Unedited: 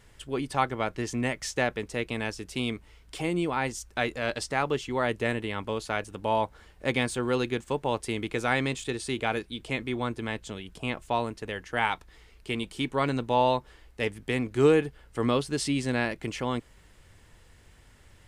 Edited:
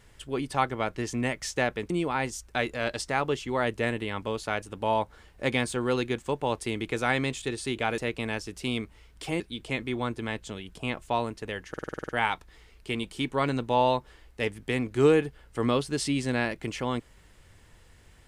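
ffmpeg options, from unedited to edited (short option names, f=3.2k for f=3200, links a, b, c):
-filter_complex "[0:a]asplit=12[a][b][c][d][e][f][g][h][i][j][k][l];[a]atrim=end=1.902[m];[b]atrim=start=3.318:end=9.402[n];[c]atrim=start=1.898:end=3.322[o];[d]atrim=start=9.398:end=11.742[p];[e]atrim=start=11.688:end=11.742[q];[f]atrim=start=11.688:end=11.742[r];[g]atrim=start=11.688:end=11.742[s];[h]atrim=start=11.688:end=11.742[t];[i]atrim=start=11.688:end=11.742[u];[j]atrim=start=11.688:end=11.742[v];[k]atrim=start=11.688:end=11.742[w];[l]atrim=start=11.688[x];[m][n]acrossfade=d=0.004:c1=hsin:c2=hsin[y];[y][o]acrossfade=d=0.004:c1=hsin:c2=hsin[z];[z][p]acrossfade=d=0.004:c1=hsin:c2=hsin[aa];[aa][q]acrossfade=d=0.004:c1=hsin:c2=hsin[ab];[ab][r]acrossfade=d=0.004:c1=hsin:c2=hsin[ac];[ac][s]acrossfade=d=0.004:c1=hsin:c2=hsin[ad];[ad][t]acrossfade=d=0.004:c1=hsin:c2=hsin[ae];[ae][u]acrossfade=d=0.004:c1=hsin:c2=hsin[af];[af][v]acrossfade=d=0.004:c1=hsin:c2=hsin[ag];[ag][w]acrossfade=d=0.004:c1=hsin:c2=hsin[ah];[ah][x]acrossfade=d=0.004:c1=hsin:c2=hsin"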